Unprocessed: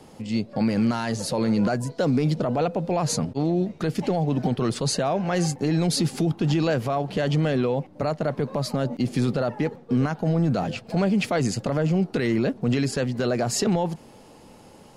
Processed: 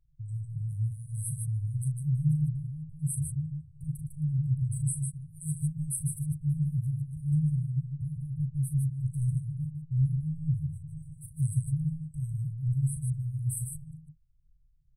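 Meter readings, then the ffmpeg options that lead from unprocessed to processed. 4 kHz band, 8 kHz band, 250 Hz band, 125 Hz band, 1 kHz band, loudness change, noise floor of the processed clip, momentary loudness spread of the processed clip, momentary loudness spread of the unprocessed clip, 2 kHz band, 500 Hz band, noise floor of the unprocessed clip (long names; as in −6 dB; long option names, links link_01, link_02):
below −40 dB, −5.0 dB, below −10 dB, −1.5 dB, below −40 dB, −7.0 dB, −62 dBFS, 10 LU, 4 LU, below −40 dB, below −40 dB, −49 dBFS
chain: -af "anlmdn=1.58,aecho=1:1:37.9|151.6:0.355|0.562,afftfilt=real='re*(1-between(b*sr/4096,160,8000))':imag='im*(1-between(b*sr/4096,160,8000))':win_size=4096:overlap=0.75"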